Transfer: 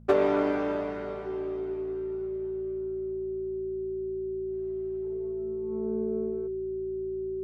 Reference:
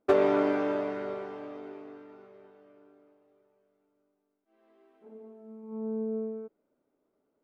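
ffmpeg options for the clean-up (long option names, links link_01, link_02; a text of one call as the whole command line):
ffmpeg -i in.wav -af "bandreject=frequency=55.9:width_type=h:width=4,bandreject=frequency=111.8:width_type=h:width=4,bandreject=frequency=167.7:width_type=h:width=4,bandreject=frequency=223.6:width_type=h:width=4,bandreject=frequency=380:width=30" out.wav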